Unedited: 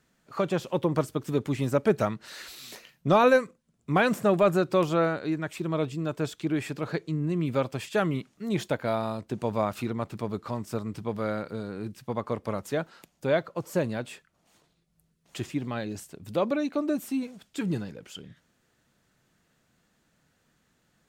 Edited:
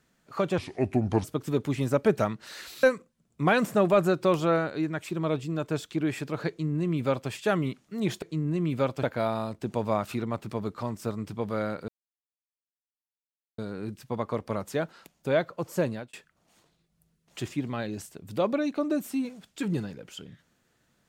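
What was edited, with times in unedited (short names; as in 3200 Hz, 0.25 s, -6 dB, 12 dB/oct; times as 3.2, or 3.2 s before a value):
0.58–1.05 speed 71%
2.64–3.32 cut
6.98–7.79 copy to 8.71
11.56 insert silence 1.70 s
13.85–14.11 fade out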